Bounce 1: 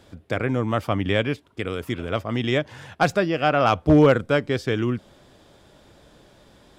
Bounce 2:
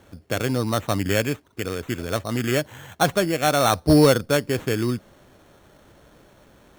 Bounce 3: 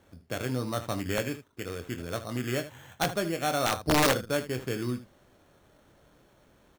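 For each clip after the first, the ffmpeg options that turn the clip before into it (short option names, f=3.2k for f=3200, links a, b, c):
-af "acrusher=samples=9:mix=1:aa=0.000001"
-af "aecho=1:1:24|77:0.355|0.224,aeval=exprs='(mod(2.37*val(0)+1,2)-1)/2.37':c=same,volume=-9dB"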